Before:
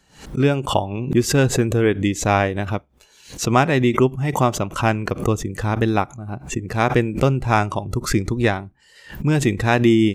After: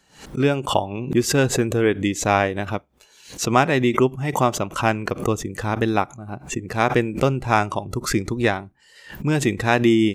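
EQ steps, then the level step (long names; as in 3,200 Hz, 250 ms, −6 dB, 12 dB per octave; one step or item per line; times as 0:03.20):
low-shelf EQ 140 Hz −8 dB
0.0 dB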